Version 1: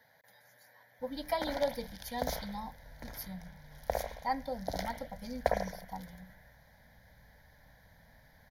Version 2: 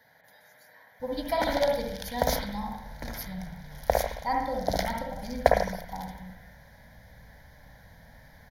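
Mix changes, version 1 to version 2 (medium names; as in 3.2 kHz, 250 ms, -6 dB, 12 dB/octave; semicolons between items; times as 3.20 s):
speech: send on; background +9.0 dB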